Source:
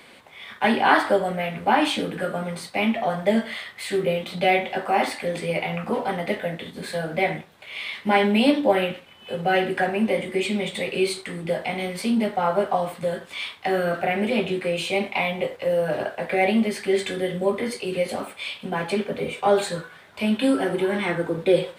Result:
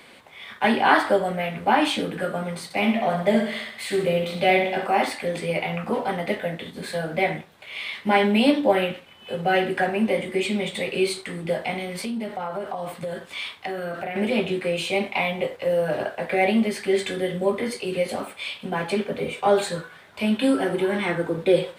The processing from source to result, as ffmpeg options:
-filter_complex "[0:a]asettb=1/sr,asplit=3[s0][s1][s2];[s0]atrim=end=2.644[s3];[s1]atrim=start=2.64:end=4.87,asetpts=PTS-STARTPTS,afade=t=in:d=0.004:c=qsin,afade=t=out:st=2.226:d=0.004:c=qsin,aecho=1:1:64|128|192|256|320|384|448:0.422|0.228|0.123|0.0664|0.0359|0.0194|0.0105,atrim=end_sample=98343[s4];[s2]atrim=start=4.866[s5];[s3][s4]acrossfade=d=0.004:c1=hsin:c2=qsin[s6];[s6][s5]acrossfade=d=0.004:c1=qsin:c2=hsin,asettb=1/sr,asplit=3[s7][s8][s9];[s7]atrim=end=11.784[s10];[s8]atrim=start=11.78:end=14.16,asetpts=PTS-STARTPTS,afade=t=in:d=0.004:c=qsin,afade=t=out:st=2.376:d=0.004:c=qsin,acompressor=threshold=0.0501:ratio=6:attack=3.2:release=140:knee=1:detection=peak[s11];[s9]atrim=start=14.156[s12];[s10][s11]acrossfade=d=0.004:c1=hsin:c2=qsin[s13];[s13][s12]acrossfade=d=0.004:c1=qsin:c2=hsin"

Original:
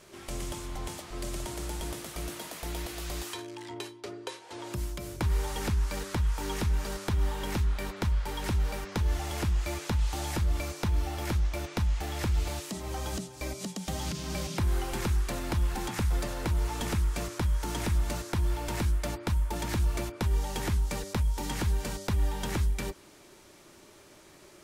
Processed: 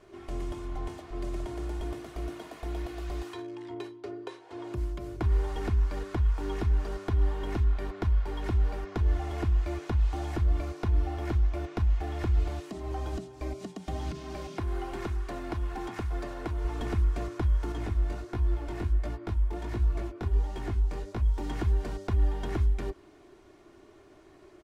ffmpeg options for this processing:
-filter_complex "[0:a]asettb=1/sr,asplit=3[s0][s1][s2];[s0]atrim=end=14.194[s3];[s1]atrim=start=14.19:end=16.65,asetpts=PTS-STARTPTS,afade=t=in:d=0.004:c=qsin,afade=t=out:st=2.456:d=0.004:c=qsin,lowshelf=f=200:g=-8[s4];[s2]atrim=start=16.646[s5];[s3][s4]acrossfade=d=0.004:c1=hsin:c2=qsin[s6];[s6][s5]acrossfade=d=0.004:c1=qsin:c2=hsin,asettb=1/sr,asplit=3[s7][s8][s9];[s7]atrim=end=17.724[s10];[s8]atrim=start=17.72:end=21.23,asetpts=PTS-STARTPTS,afade=t=in:d=0.004:c=qsin,afade=t=out:st=3.506:d=0.004:c=qsin,flanger=delay=16:depth=7.3:speed=1.4[s11];[s9]atrim=start=21.226[s12];[s10][s11]acrossfade=d=0.004:c1=hsin:c2=qsin[s13];[s13][s12]acrossfade=d=0.004:c1=qsin:c2=hsin,lowpass=f=1100:p=1,aecho=1:1:2.8:0.51"

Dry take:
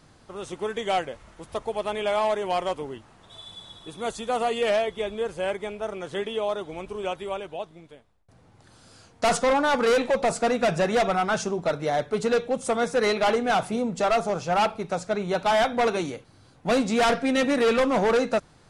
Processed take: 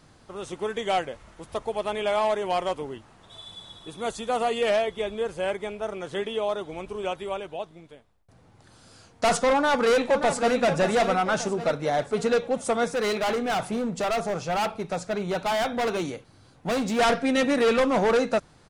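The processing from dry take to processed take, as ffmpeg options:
-filter_complex "[0:a]asplit=2[s0][s1];[s1]afade=t=in:st=9.52:d=0.01,afade=t=out:st=10.56:d=0.01,aecho=0:1:580|1160|1740|2320|2900|3480:0.375837|0.187919|0.0939594|0.0469797|0.0234898|0.0117449[s2];[s0][s2]amix=inputs=2:normalize=0,asettb=1/sr,asplit=3[s3][s4][s5];[s3]atrim=end=12.914[s6];[s4]atrim=start=12.91:end=16.99,asetpts=PTS-STARTPTS,afade=t=in:d=0.004:c=qsin,afade=t=out:st=4.076:d=0.004:c=qsin,volume=14.1,asoftclip=hard,volume=0.0708[s7];[s5]atrim=start=16.986[s8];[s6][s7]acrossfade=d=0.004:c1=hsin:c2=qsin[s9];[s9][s8]acrossfade=d=0.004:c1=qsin:c2=hsin"

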